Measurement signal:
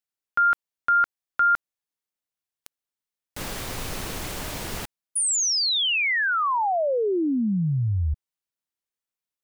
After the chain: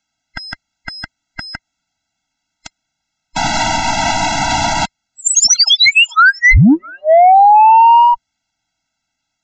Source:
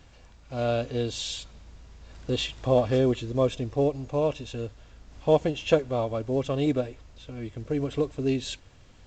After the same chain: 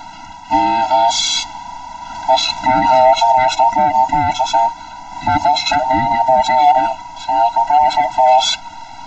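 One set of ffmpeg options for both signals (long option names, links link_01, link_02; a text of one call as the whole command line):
ffmpeg -i in.wav -af "afftfilt=real='real(if(between(b,1,1008),(2*floor((b-1)/48)+1)*48-b,b),0)':imag='imag(if(between(b,1,1008),(2*floor((b-1)/48)+1)*48-b,b),0)*if(between(b,1,1008),-1,1)':win_size=2048:overlap=0.75,aresample=16000,asoftclip=type=tanh:threshold=-19dB,aresample=44100,alimiter=level_in=26.5dB:limit=-1dB:release=50:level=0:latency=1,afftfilt=real='re*eq(mod(floor(b*sr/1024/320),2),0)':imag='im*eq(mod(floor(b*sr/1024/320),2),0)':win_size=1024:overlap=0.75,volume=-2.5dB" out.wav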